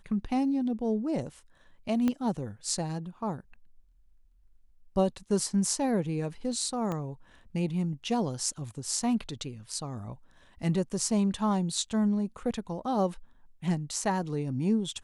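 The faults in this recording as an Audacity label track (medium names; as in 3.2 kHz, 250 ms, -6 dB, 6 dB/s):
2.080000	2.080000	pop -16 dBFS
6.920000	6.920000	pop -21 dBFS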